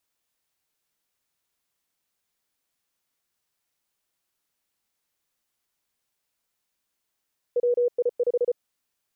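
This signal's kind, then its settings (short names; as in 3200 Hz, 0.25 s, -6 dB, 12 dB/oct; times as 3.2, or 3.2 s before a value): Morse "WI5" 34 wpm 485 Hz -18.5 dBFS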